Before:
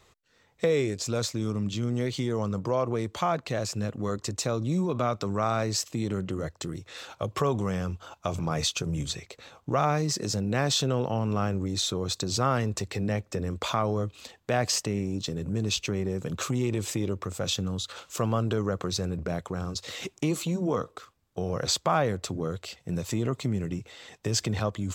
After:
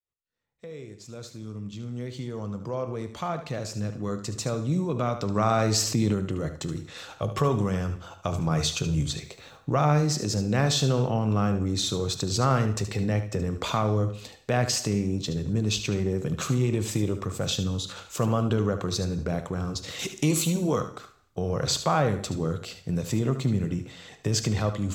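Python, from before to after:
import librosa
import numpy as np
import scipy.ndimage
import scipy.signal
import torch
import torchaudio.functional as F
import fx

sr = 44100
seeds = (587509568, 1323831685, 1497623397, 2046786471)

y = fx.fade_in_head(x, sr, length_s=5.93)
y = fx.low_shelf(y, sr, hz=190.0, db=6.0)
y = fx.dmg_noise_colour(y, sr, seeds[0], colour='white', level_db=-73.0, at=(9.11, 9.56), fade=0.02)
y = fx.peak_eq(y, sr, hz=11000.0, db=10.5, octaves=2.6, at=(19.99, 20.81))
y = y + 10.0 ** (-11.0 / 20.0) * np.pad(y, (int(74 * sr / 1000.0), 0))[:len(y)]
y = fx.rev_gated(y, sr, seeds[1], gate_ms=290, shape='falling', drr_db=11.5)
y = fx.env_flatten(y, sr, amount_pct=50, at=(5.35, 6.13), fade=0.02)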